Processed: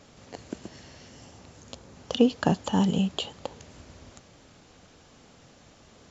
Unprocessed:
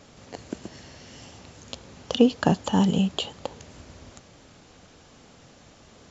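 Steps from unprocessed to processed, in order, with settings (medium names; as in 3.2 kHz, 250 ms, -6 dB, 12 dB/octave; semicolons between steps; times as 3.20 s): 1.06–2.11 s: dynamic bell 3.1 kHz, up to -5 dB, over -55 dBFS, Q 0.79; trim -2.5 dB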